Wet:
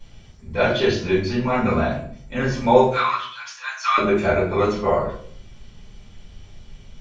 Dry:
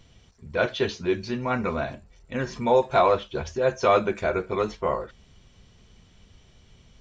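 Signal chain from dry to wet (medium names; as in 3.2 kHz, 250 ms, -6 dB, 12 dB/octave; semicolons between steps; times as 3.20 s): 2.84–3.98 s: elliptic high-pass 1.1 kHz, stop band 70 dB; simulated room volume 62 m³, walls mixed, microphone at 2.3 m; trim -4 dB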